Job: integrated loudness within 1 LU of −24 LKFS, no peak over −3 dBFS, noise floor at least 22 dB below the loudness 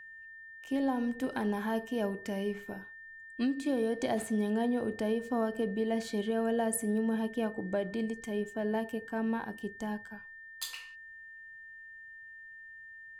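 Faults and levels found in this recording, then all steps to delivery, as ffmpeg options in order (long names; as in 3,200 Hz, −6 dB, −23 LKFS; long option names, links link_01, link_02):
interfering tone 1,800 Hz; level of the tone −47 dBFS; integrated loudness −33.5 LKFS; sample peak −19.0 dBFS; target loudness −24.0 LKFS
→ -af "bandreject=frequency=1800:width=30"
-af "volume=9.5dB"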